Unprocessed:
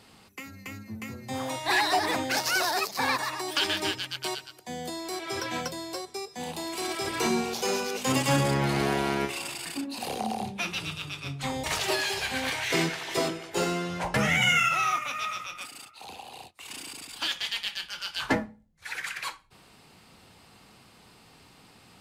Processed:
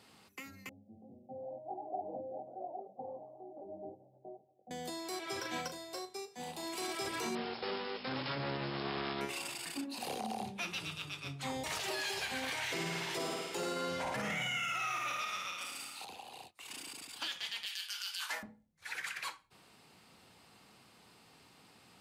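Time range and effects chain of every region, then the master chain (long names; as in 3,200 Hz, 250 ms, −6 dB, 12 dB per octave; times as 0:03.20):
0:00.69–0:04.71: Chebyshev low-pass with heavy ripple 800 Hz, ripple 6 dB + spectral tilt +3 dB per octave + double-tracking delay 21 ms −3 dB
0:05.37–0:06.63: flutter between parallel walls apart 6.5 metres, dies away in 0.27 s + expander for the loud parts, over −42 dBFS
0:07.35–0:09.21: phase distortion by the signal itself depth 0.74 ms + linear-phase brick-wall low-pass 5,400 Hz
0:12.57–0:16.05: flutter between parallel walls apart 9.2 metres, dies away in 0.9 s + one half of a high-frequency compander encoder only
0:17.66–0:18.43: high-pass filter 840 Hz + spectral tilt +4 dB per octave
whole clip: brickwall limiter −22 dBFS; high-pass filter 130 Hz 6 dB per octave; level −6 dB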